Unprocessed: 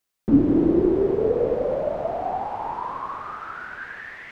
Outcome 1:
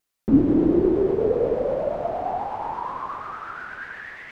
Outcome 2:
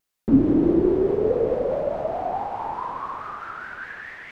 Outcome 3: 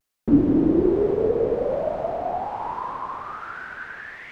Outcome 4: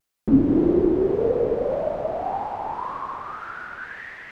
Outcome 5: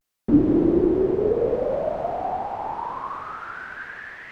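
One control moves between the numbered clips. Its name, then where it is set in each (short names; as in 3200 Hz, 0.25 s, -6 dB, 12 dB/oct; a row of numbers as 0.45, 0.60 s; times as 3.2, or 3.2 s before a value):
vibrato, rate: 8.4, 4.7, 1.2, 1.8, 0.65 Hz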